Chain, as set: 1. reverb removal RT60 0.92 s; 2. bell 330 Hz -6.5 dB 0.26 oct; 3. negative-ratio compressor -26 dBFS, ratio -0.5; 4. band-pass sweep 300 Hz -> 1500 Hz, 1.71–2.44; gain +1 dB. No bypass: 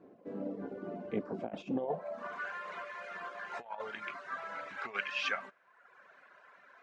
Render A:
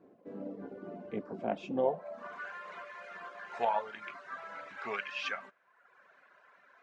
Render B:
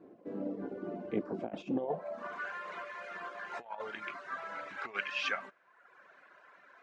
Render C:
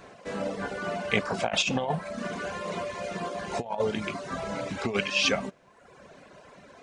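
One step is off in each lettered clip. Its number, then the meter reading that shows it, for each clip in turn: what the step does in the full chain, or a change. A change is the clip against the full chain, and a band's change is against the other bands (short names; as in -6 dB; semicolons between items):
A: 3, momentary loudness spread change -9 LU; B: 2, 250 Hz band +1.5 dB; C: 4, 4 kHz band +7.0 dB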